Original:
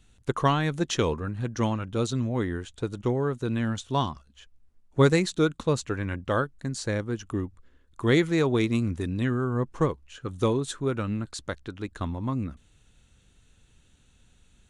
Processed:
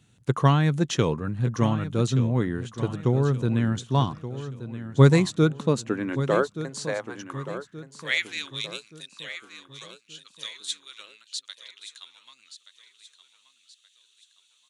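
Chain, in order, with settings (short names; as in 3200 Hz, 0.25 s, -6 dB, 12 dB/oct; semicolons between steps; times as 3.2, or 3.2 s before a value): high-pass sweep 130 Hz -> 3600 Hz, 5.34–8.59; feedback echo 1.176 s, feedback 40%, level -12.5 dB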